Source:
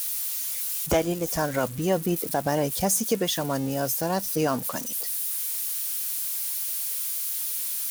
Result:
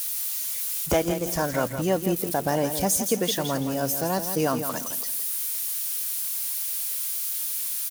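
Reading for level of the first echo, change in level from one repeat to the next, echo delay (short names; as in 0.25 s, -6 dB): -9.0 dB, -11.0 dB, 0.166 s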